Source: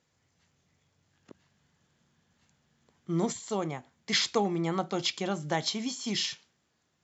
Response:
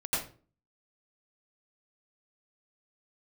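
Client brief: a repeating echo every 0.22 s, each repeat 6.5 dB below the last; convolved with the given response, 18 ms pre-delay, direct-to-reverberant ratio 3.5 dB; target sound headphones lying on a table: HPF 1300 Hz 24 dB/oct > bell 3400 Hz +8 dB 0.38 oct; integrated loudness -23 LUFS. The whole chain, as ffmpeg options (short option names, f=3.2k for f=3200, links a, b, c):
-filter_complex "[0:a]aecho=1:1:220|440|660|880|1100|1320:0.473|0.222|0.105|0.0491|0.0231|0.0109,asplit=2[a][b];[1:a]atrim=start_sample=2205,adelay=18[c];[b][c]afir=irnorm=-1:irlink=0,volume=-11dB[d];[a][d]amix=inputs=2:normalize=0,highpass=f=1.3k:w=0.5412,highpass=f=1.3k:w=1.3066,equalizer=f=3.4k:t=o:w=0.38:g=8,volume=5dB"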